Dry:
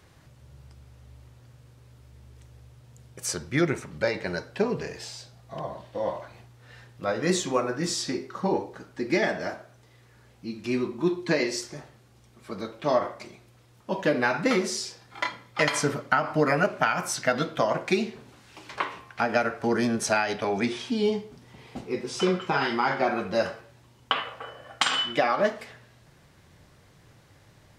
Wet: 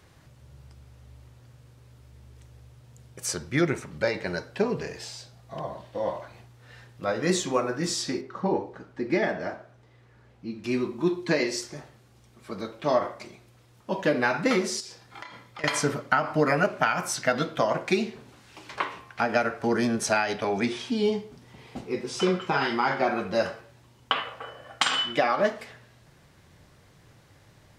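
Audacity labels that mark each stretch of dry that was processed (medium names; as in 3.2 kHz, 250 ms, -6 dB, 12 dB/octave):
8.210000	10.640000	low-pass 2.2 kHz 6 dB/octave
14.800000	15.640000	compression 10:1, threshold -37 dBFS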